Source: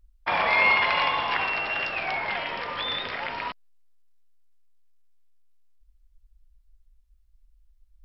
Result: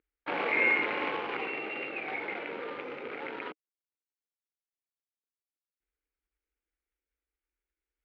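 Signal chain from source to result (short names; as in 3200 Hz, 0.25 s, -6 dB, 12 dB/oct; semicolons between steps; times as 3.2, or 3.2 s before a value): median filter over 25 samples; speaker cabinet 290–3000 Hz, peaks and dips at 310 Hz +7 dB, 450 Hz +6 dB, 660 Hz -10 dB, 1000 Hz -10 dB, 1500 Hz +4 dB, 2200 Hz +7 dB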